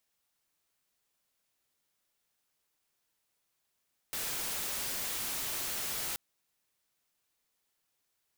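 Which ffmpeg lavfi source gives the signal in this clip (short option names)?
-f lavfi -i "anoisesrc=c=white:a=0.0274:d=2.03:r=44100:seed=1"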